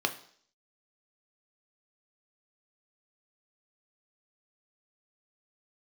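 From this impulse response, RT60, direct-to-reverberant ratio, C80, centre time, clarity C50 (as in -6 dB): 0.55 s, 6.0 dB, 17.5 dB, 8 ms, 14.0 dB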